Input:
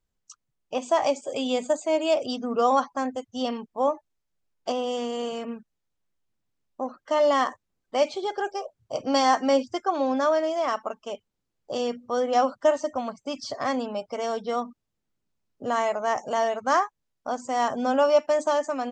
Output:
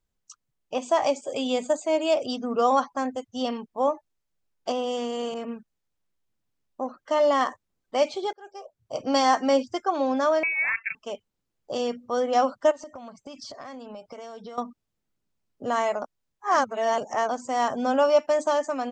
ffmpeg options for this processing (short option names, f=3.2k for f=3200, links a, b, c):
-filter_complex "[0:a]asettb=1/sr,asplit=3[a][b][c];[a]atrim=end=5.344[d];[b]atrim=start=5.34:end=7.41,asetpts=PTS-STARTPTS,afade=t=in:d=0.004:c=qsin,afade=t=out:st=2.066:d=0.004:c=qsin,adynamicequalizer=threshold=0.0112:dfrequency=1700:dqfactor=0.7:tfrequency=1700:tqfactor=0.7:attack=5:release=100:ratio=0.375:range=3:mode=cutabove:tftype=highshelf[e];[c]atrim=start=7.406[f];[d][e]acrossfade=d=0.004:c1=hsin:c2=qsin[g];[g][f]acrossfade=d=0.004:c1=qsin:c2=hsin,asettb=1/sr,asplit=3[h][i][j];[h]atrim=end=10.434[k];[i]atrim=start=10.43:end=10.95,asetpts=PTS-STARTPTS,afade=t=in:d=0.004:c=qsin,afade=t=out:st=0.516:d=0.004:c=qsin,lowpass=f=2.5k:t=q:w=0.5098,lowpass=f=2.5k:t=q:w=0.6013,lowpass=f=2.5k:t=q:w=0.9,lowpass=f=2.5k:t=q:w=2.563,afreqshift=-2900[l];[j]atrim=start=10.946[m];[k][l]acrossfade=d=0.004:c1=hsin:c2=qsin[n];[n][m]acrossfade=d=0.004:c1=qsin:c2=hsin,asettb=1/sr,asplit=3[o][p][q];[o]atrim=end=12.714[r];[p]atrim=start=12.71:end=14.58,asetpts=PTS-STARTPTS,afade=t=in:d=0.004:c=qsin,afade=t=out:st=1.866:d=0.004:c=qsin,acompressor=threshold=-36dB:ratio=12:attack=3.2:release=140:knee=1:detection=peak[s];[q]atrim=start=14.576[t];[r][s]acrossfade=d=0.004:c1=hsin:c2=qsin[u];[u][t]acrossfade=d=0.004:c1=qsin:c2=hsin,asplit=4[v][w][x][y];[v]atrim=end=8.33,asetpts=PTS-STARTPTS,afade=t=out:st=8.326:d=0.004:c=hsin[z];[w]atrim=start=8.33:end=16.022,asetpts=PTS-STARTPTS,afade=t=in:d=0.74[aa];[x]atrim=start=16.018:end=17.292,asetpts=PTS-STARTPTS,areverse[ab];[y]atrim=start=17.288[ac];[z][aa]concat=n=2:v=0:a=1[ad];[ad][ab]acrossfade=d=0.004:c1=hsin:c2=hsin[ae];[ae][ac]acrossfade=d=0.004:c1=hsin:c2=hsin"